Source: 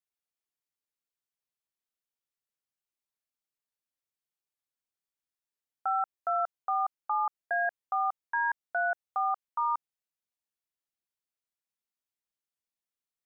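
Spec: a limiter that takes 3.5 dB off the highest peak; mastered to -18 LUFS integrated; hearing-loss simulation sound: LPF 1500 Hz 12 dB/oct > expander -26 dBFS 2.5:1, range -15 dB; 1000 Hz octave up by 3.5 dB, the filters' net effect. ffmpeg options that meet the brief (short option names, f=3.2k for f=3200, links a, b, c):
-af "equalizer=f=1k:t=o:g=6,alimiter=limit=-20dB:level=0:latency=1,lowpass=1.5k,agate=range=-15dB:threshold=-26dB:ratio=2.5,volume=13dB"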